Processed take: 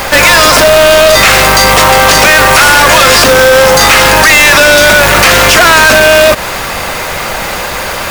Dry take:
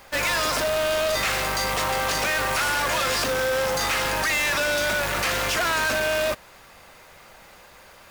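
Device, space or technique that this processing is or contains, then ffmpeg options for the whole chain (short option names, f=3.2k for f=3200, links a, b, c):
loud club master: -af "acompressor=threshold=-27dB:ratio=2,asoftclip=type=hard:threshold=-25dB,alimiter=level_in=34dB:limit=-1dB:release=50:level=0:latency=1,volume=-1dB"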